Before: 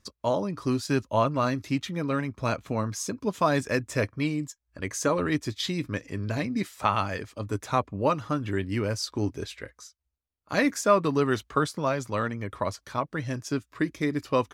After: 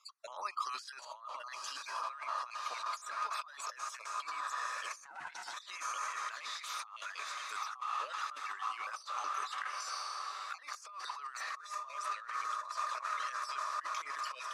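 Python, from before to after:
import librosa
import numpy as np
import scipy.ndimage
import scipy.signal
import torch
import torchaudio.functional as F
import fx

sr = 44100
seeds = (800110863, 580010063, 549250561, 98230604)

p1 = fx.spec_dropout(x, sr, seeds[0], share_pct=38)
p2 = scipy.signal.sosfilt(scipy.signal.butter(4, 930.0, 'highpass', fs=sr, output='sos'), p1)
p3 = fx.high_shelf(p2, sr, hz=2300.0, db=4.0)
p4 = p3 + fx.echo_diffused(p3, sr, ms=966, feedback_pct=57, wet_db=-11.5, dry=0)
p5 = fx.over_compress(p4, sr, threshold_db=-44.0, ratio=-1.0)
p6 = scipy.signal.sosfilt(scipy.signal.butter(2, 9500.0, 'lowpass', fs=sr, output='sos'), p5)
p7 = fx.peak_eq(p6, sr, hz=1200.0, db=10.5, octaves=0.37)
p8 = fx.ring_mod(p7, sr, carrier_hz=290.0, at=(5.05, 5.54))
p9 = fx.band_squash(p8, sr, depth_pct=40, at=(10.89, 11.47))
y = F.gain(torch.from_numpy(p9), -4.0).numpy()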